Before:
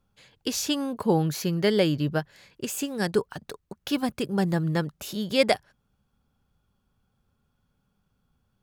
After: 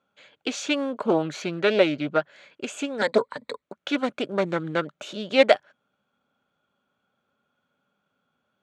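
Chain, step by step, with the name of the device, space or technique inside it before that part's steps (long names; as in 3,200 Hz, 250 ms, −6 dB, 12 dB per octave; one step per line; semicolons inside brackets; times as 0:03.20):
0:03.01–0:03.62: EQ curve with evenly spaced ripples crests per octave 0.98, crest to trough 16 dB
full-range speaker at full volume (highs frequency-modulated by the lows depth 0.3 ms; loudspeaker in its box 260–6,800 Hz, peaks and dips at 270 Hz +3 dB, 600 Hz +9 dB, 1,400 Hz +8 dB, 2,300 Hz +5 dB, 3,300 Hz +4 dB, 5,100 Hz −10 dB)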